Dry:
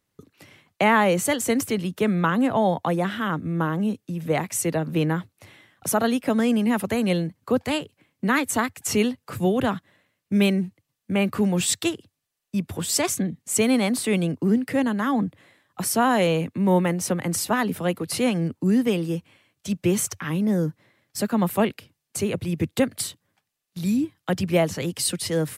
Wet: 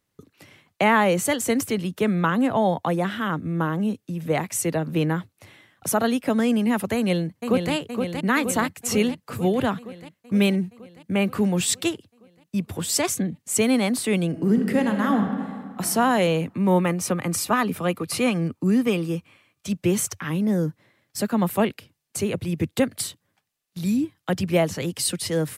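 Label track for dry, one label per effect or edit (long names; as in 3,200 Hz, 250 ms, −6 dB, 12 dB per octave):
6.950000	7.730000	delay throw 470 ms, feedback 70%, level −5.5 dB
14.270000	15.850000	thrown reverb, RT60 1.9 s, DRR 4 dB
16.530000	19.690000	hollow resonant body resonances 1,200/2,400 Hz, height 9 dB, ringing for 25 ms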